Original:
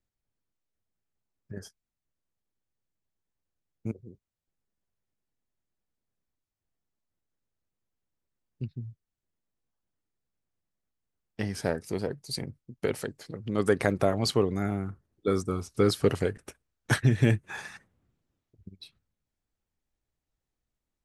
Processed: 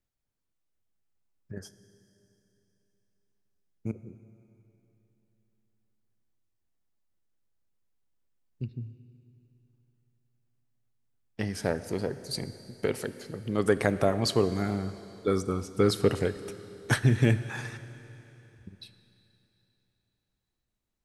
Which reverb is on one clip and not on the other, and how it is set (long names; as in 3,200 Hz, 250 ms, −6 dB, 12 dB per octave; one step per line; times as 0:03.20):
four-comb reverb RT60 3.3 s, combs from 25 ms, DRR 12.5 dB